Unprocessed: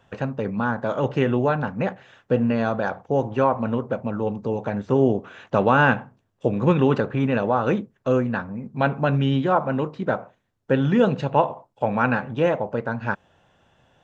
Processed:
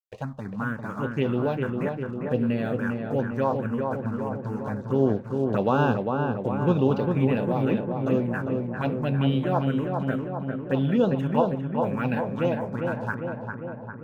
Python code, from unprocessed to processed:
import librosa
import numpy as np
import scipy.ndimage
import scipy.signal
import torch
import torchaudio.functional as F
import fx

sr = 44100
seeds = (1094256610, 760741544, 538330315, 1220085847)

y = np.sign(x) * np.maximum(np.abs(x) - 10.0 ** (-46.0 / 20.0), 0.0)
y = fx.env_phaser(y, sr, low_hz=200.0, high_hz=2000.0, full_db=-14.5)
y = fx.echo_filtered(y, sr, ms=401, feedback_pct=68, hz=2000.0, wet_db=-4.0)
y = y * librosa.db_to_amplitude(-3.0)